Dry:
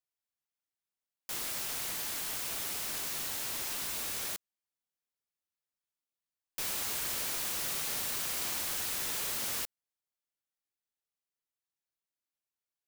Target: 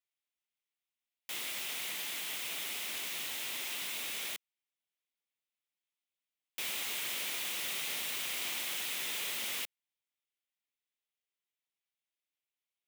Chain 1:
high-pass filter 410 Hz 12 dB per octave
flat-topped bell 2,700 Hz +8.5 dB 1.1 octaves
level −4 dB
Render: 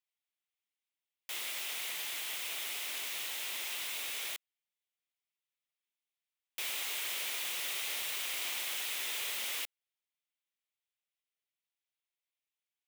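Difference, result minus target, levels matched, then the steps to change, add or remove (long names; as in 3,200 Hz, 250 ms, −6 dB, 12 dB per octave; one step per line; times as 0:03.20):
250 Hz band −6.5 dB
change: high-pass filter 180 Hz 12 dB per octave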